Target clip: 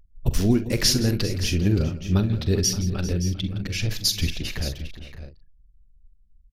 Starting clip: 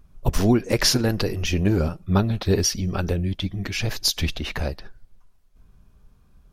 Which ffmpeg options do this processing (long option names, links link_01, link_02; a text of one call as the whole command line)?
ffmpeg -i in.wav -filter_complex "[0:a]anlmdn=3.98,equalizer=frequency=900:width_type=o:width=1.7:gain=-12,asplit=2[link_01][link_02];[link_02]aecho=0:1:45|65|167|396|571|609:0.224|0.119|0.15|0.15|0.211|0.126[link_03];[link_01][link_03]amix=inputs=2:normalize=0" out.wav